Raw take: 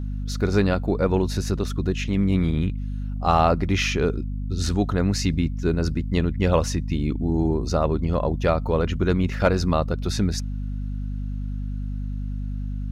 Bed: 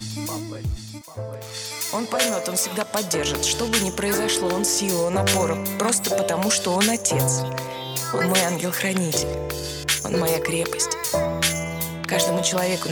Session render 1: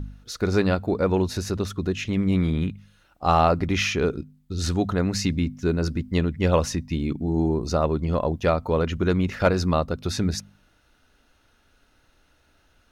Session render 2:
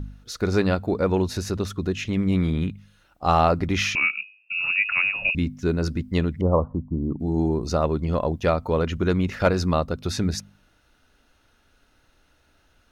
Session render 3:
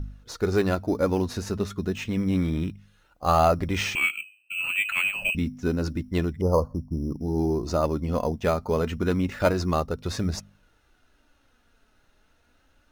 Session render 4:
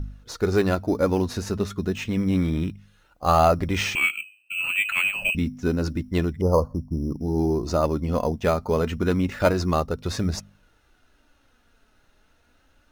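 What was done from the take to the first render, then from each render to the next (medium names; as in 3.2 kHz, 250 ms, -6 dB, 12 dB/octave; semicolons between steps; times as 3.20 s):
de-hum 50 Hz, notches 5
3.95–5.35 s: frequency inversion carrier 2.7 kHz; 6.41–7.20 s: steep low-pass 1.2 kHz 72 dB/octave
in parallel at -9.5 dB: sample-and-hold 8×; on the sum: flange 0.29 Hz, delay 1.4 ms, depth 3.6 ms, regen +61%
trim +2 dB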